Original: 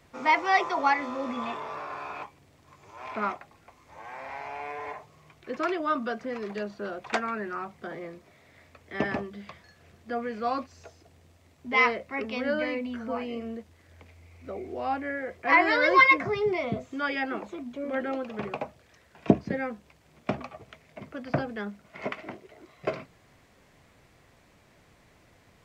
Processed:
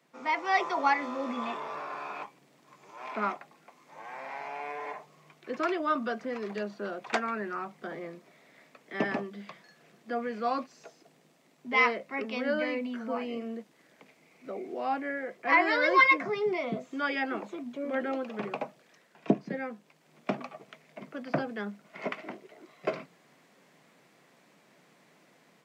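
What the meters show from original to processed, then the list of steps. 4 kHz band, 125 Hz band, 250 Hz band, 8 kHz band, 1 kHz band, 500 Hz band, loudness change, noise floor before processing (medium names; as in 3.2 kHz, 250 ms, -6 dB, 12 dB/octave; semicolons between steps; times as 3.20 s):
-2.5 dB, -6.0 dB, -2.0 dB, no reading, -2.5 dB, -2.0 dB, -2.5 dB, -60 dBFS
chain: steep high-pass 150 Hz 48 dB/octave; level rider gain up to 7 dB; trim -8 dB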